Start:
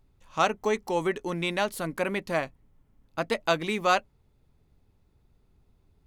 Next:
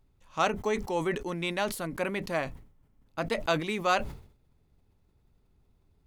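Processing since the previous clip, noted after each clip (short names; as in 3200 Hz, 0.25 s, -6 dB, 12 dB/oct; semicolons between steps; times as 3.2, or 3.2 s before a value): sustainer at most 99 dB/s; gain -3 dB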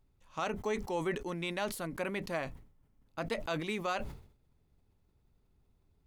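limiter -20 dBFS, peak gain reduction 7.5 dB; gain -4 dB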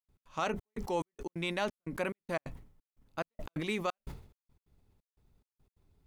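step gate ".x.xxxx..xxx." 177 bpm -60 dB; gain +2 dB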